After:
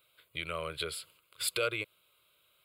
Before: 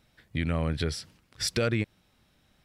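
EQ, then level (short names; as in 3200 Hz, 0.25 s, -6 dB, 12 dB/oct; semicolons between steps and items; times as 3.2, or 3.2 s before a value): HPF 900 Hz 6 dB/oct; high shelf 9700 Hz +10 dB; fixed phaser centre 1200 Hz, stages 8; +2.5 dB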